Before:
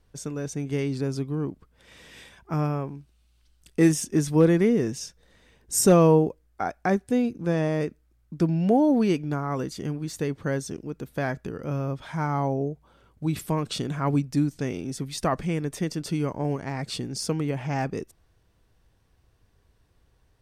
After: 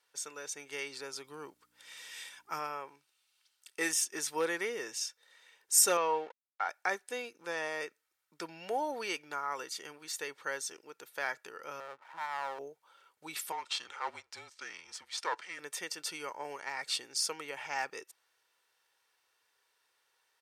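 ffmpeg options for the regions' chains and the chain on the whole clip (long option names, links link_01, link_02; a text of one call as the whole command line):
ffmpeg -i in.wav -filter_complex "[0:a]asettb=1/sr,asplit=3[link_01][link_02][link_03];[link_01]atrim=end=1.244[link_04];[link_02]atrim=start=1.24:end=2.59,asetpts=PTS-STARTPTS,afade=type=in:duration=0.004:curve=qsin,afade=type=out:start_time=1.346:duration=0.004:curve=qsin,bass=frequency=250:gain=5,treble=frequency=4000:gain=6,aeval=exprs='val(0)+0.00631*(sin(2*PI*60*n/s)+sin(2*PI*2*60*n/s)/2+sin(2*PI*3*60*n/s)/3+sin(2*PI*4*60*n/s)/4+sin(2*PI*5*60*n/s)/5)':channel_layout=same[link_05];[link_03]atrim=start=2.586[link_06];[link_04][link_05]acrossfade=duration=0.004:curve1=hsin:curve2=qsin[link_07];[link_07][link_06]acrossfade=duration=0.004:curve1=qsin:curve2=hsin,asettb=1/sr,asplit=3[link_08][link_09][link_10];[link_08]atrim=end=5.974[link_11];[link_09]atrim=start=5.97:end=6.69,asetpts=PTS-STARTPTS,afade=type=in:duration=0.004:curve=qsin,afade=type=out:start_time=0.716:duration=0.004:curve=qsin,equalizer=frequency=380:width=4.6:gain=-12,aeval=exprs='sgn(val(0))*max(abs(val(0))-0.00531,0)':channel_layout=same,highpass=190,lowpass=3700[link_12];[link_10]atrim=start=6.686[link_13];[link_11][link_12]acrossfade=duration=0.004:curve1=hsin:curve2=qsin[link_14];[link_14][link_13]acrossfade=duration=0.004:curve1=qsin:curve2=hsin,asettb=1/sr,asplit=3[link_15][link_16][link_17];[link_15]atrim=end=11.804[link_18];[link_16]atrim=start=11.8:end=12.59,asetpts=PTS-STARTPTS,afade=type=in:duration=0.004:curve=qsin,afade=type=out:start_time=0.786:duration=0.004:curve=qsin,lowpass=frequency=1200:width=0.5412,lowpass=frequency=1200:width=1.3066,aeval=exprs='max(val(0),0)':channel_layout=same[link_19];[link_17]atrim=start=12.586[link_20];[link_18][link_19]acrossfade=duration=0.004:curve1=hsin:curve2=qsin[link_21];[link_21][link_20]acrossfade=duration=0.004:curve1=qsin:curve2=hsin,asettb=1/sr,asplit=3[link_22][link_23][link_24];[link_22]atrim=end=13.524[link_25];[link_23]atrim=start=13.52:end=15.59,asetpts=PTS-STARTPTS,afade=type=in:duration=0.004:curve=qsin,afade=type=out:start_time=2.066:duration=0.004:curve=qsin,aeval=exprs='if(lt(val(0),0),0.447*val(0),val(0))':channel_layout=same,highpass=230,lowpass=6700,afreqshift=-180[link_26];[link_24]atrim=start=15.586[link_27];[link_25][link_26]acrossfade=duration=0.004:curve1=hsin:curve2=qsin[link_28];[link_28][link_27]acrossfade=duration=0.004:curve1=qsin:curve2=hsin,highpass=1100,aecho=1:1:2.2:0.38" out.wav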